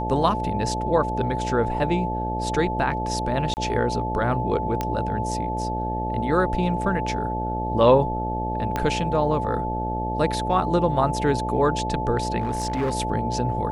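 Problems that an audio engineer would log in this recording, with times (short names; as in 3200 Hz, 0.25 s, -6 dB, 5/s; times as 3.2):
buzz 60 Hz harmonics 12 -29 dBFS
tone 870 Hz -27 dBFS
3.54–3.57 gap 29 ms
4.81 pop -11 dBFS
8.76 pop -11 dBFS
12.39–12.93 clipped -20 dBFS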